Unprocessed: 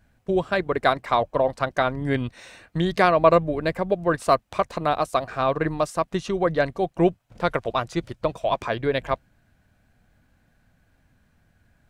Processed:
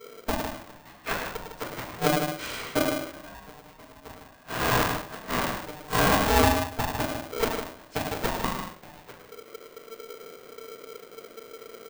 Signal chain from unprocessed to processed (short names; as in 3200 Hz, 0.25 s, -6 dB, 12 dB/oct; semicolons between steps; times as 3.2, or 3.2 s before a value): 4.21–6.43 stepped spectrum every 0.2 s; dynamic EQ 700 Hz, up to -5 dB, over -33 dBFS, Q 4.4; flipped gate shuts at -19 dBFS, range -39 dB; loudspeakers at several distances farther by 36 m -8 dB, 53 m -9 dB; shoebox room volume 31 m³, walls mixed, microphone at 1.5 m; polarity switched at an audio rate 450 Hz; gain +1 dB